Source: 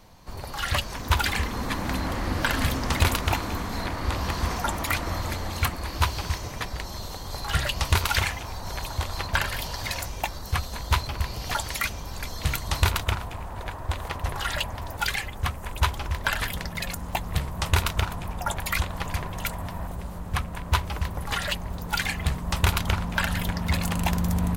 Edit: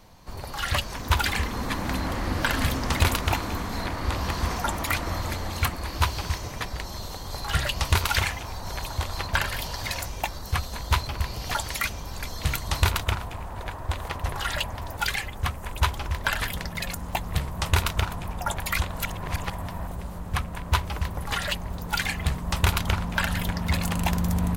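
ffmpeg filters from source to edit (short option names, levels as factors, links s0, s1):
-filter_complex "[0:a]asplit=3[s0][s1][s2];[s0]atrim=end=18.982[s3];[s1]atrim=start=18.978:end=19.522,asetpts=PTS-STARTPTS,areverse[s4];[s2]atrim=start=19.518[s5];[s3][s4]acrossfade=d=0.004:c1=hsin:c2=hsin[s6];[s6][s5]acrossfade=d=0.004:c1=hsin:c2=hsin"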